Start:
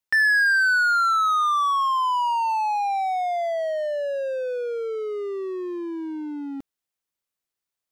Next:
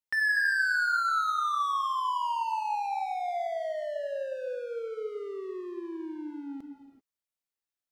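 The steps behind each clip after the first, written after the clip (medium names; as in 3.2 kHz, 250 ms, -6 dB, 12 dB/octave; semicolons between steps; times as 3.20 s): gated-style reverb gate 410 ms flat, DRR 5.5 dB; trim -8.5 dB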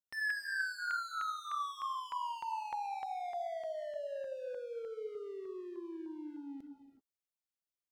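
LFO notch saw down 3.3 Hz 920–2500 Hz; trim -6.5 dB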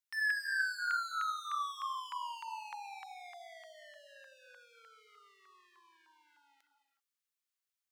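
high-pass 1.1 kHz 24 dB/octave; trim +3 dB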